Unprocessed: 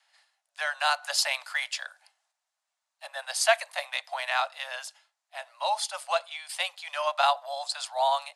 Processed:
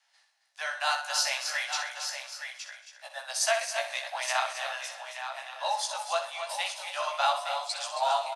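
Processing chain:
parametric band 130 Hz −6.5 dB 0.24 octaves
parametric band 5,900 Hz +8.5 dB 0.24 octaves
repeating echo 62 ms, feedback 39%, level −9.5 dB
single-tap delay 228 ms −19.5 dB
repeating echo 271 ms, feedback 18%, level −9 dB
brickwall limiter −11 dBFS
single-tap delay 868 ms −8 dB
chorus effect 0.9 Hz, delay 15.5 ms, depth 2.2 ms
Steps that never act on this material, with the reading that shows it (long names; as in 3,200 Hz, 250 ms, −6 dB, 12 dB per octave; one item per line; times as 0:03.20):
parametric band 130 Hz: nothing at its input below 480 Hz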